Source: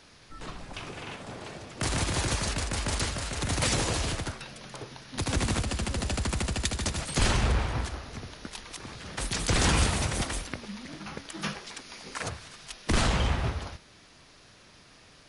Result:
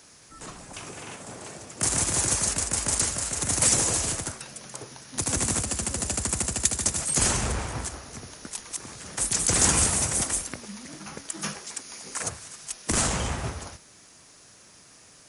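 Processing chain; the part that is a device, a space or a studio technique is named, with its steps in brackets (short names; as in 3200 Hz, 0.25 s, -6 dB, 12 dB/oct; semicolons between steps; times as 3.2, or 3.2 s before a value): budget condenser microphone (HPF 95 Hz 6 dB/oct; resonant high shelf 5400 Hz +10.5 dB, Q 1.5)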